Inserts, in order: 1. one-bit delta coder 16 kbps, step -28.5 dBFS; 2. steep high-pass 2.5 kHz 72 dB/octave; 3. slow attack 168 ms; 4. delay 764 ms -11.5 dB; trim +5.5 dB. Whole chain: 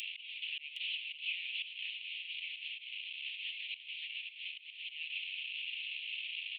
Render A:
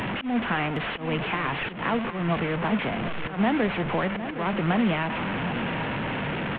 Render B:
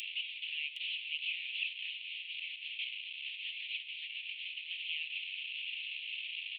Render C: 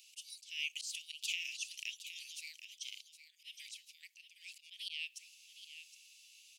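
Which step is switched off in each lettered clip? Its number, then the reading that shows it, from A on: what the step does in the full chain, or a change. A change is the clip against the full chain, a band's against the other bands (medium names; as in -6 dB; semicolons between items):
2, momentary loudness spread change +1 LU; 3, crest factor change +2.5 dB; 1, crest factor change +8.5 dB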